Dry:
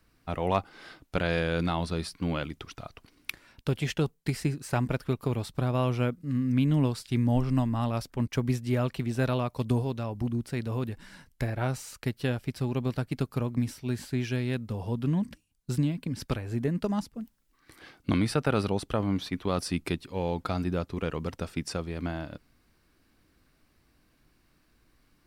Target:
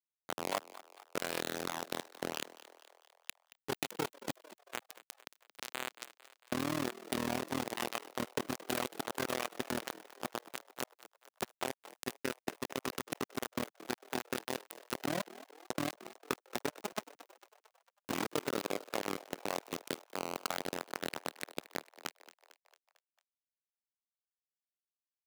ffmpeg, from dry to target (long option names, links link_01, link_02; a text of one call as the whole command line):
ffmpeg -i in.wav -filter_complex "[0:a]bandreject=frequency=2200:width=5,asoftclip=type=hard:threshold=-22.5dB,asettb=1/sr,asplit=3[link_01][link_02][link_03];[link_01]atrim=end=4.364[link_04];[link_02]atrim=start=4.36:end=6.52,asetpts=PTS-STARTPTS,afade=type=in:duration=0.004:curve=qsin,afade=type=out:start_time=2.156:duration=0.004:curve=qsin,lowshelf=frequency=410:gain=-3[link_05];[link_03]atrim=start=6.516[link_06];[link_04][link_05]acrossfade=duration=0.004:curve1=hsin:curve2=qsin[link_07];[link_07][link_06]acrossfade=duration=0.004:curve1=qsin:curve2=hsin,acrusher=bits=3:mix=0:aa=0.000001,acompressor=threshold=-25dB:ratio=3,highpass=250,asplit=6[link_08][link_09][link_10][link_11][link_12][link_13];[link_09]adelay=225,afreqshift=78,volume=-17dB[link_14];[link_10]adelay=450,afreqshift=156,volume=-22dB[link_15];[link_11]adelay=675,afreqshift=234,volume=-27.1dB[link_16];[link_12]adelay=900,afreqshift=312,volume=-32.1dB[link_17];[link_13]adelay=1125,afreqshift=390,volume=-37.1dB[link_18];[link_08][link_14][link_15][link_16][link_17][link_18]amix=inputs=6:normalize=0,tremolo=f=40:d=0.947,volume=-1dB" out.wav